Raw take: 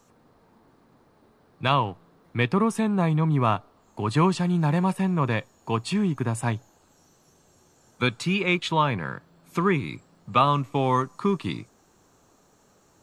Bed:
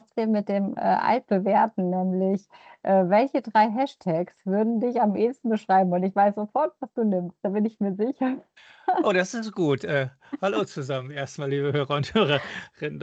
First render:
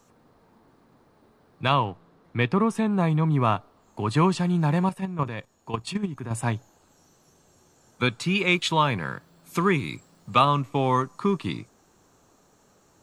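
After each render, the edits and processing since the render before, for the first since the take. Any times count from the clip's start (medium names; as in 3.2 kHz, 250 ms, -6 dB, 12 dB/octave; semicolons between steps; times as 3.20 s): 1.84–2.91 s: treble shelf 8.5 kHz -> 6.3 kHz -7 dB; 4.89–6.31 s: level held to a coarse grid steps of 11 dB; 8.35–10.45 s: treble shelf 4.1 kHz +9 dB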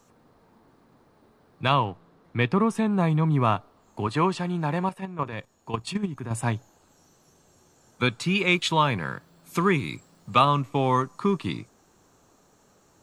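4.07–5.33 s: tone controls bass -7 dB, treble -5 dB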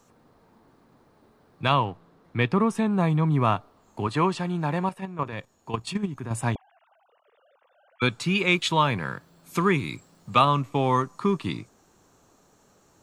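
6.55–8.02 s: formants replaced by sine waves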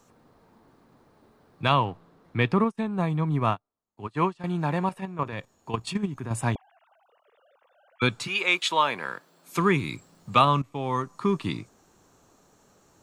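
2.64–4.44 s: upward expansion 2.5:1, over -41 dBFS; 8.26–9.57 s: high-pass 620 Hz -> 260 Hz; 10.62–11.37 s: fade in, from -12.5 dB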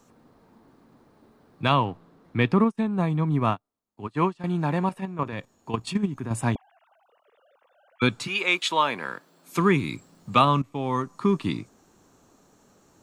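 peaking EQ 250 Hz +4.5 dB 0.99 oct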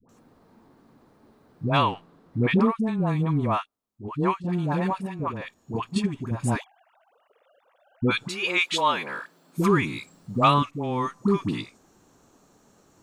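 phase dispersion highs, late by 92 ms, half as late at 690 Hz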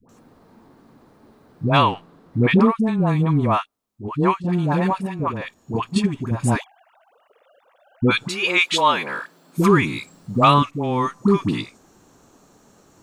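trim +5.5 dB; peak limiter -2 dBFS, peak gain reduction 2 dB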